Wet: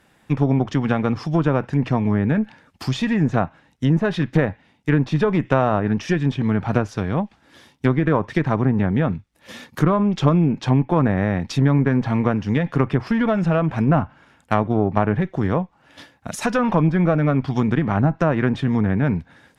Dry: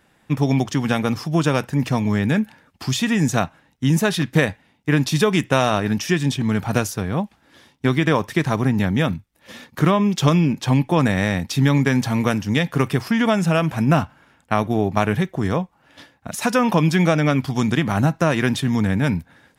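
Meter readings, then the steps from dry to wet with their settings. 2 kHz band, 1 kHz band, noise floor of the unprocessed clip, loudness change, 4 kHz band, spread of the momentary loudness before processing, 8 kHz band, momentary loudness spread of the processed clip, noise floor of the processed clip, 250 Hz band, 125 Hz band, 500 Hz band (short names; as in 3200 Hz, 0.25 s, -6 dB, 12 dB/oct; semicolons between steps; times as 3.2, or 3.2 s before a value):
-4.0 dB, -0.5 dB, -60 dBFS, -0.5 dB, -8.5 dB, 7 LU, under -10 dB, 7 LU, -59 dBFS, 0.0 dB, +0.5 dB, 0.0 dB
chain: one diode to ground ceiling -16.5 dBFS; treble ducked by the level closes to 1500 Hz, closed at -15 dBFS; dynamic EQ 3600 Hz, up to -3 dB, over -37 dBFS, Q 0.71; gain +1.5 dB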